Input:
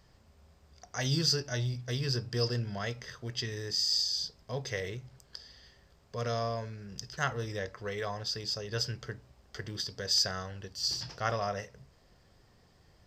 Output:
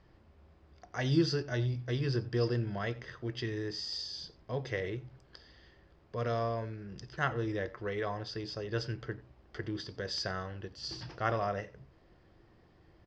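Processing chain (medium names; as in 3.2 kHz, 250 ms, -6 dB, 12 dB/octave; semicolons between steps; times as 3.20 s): low-pass 2.9 kHz 12 dB/octave; peaking EQ 330 Hz +11.5 dB 0.26 oct; delay 89 ms -21.5 dB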